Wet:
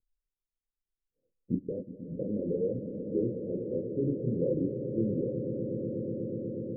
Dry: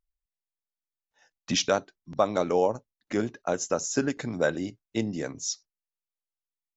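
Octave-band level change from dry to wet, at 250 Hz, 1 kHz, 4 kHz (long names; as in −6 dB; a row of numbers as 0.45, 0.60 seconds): 0.0 dB, below −40 dB, below −40 dB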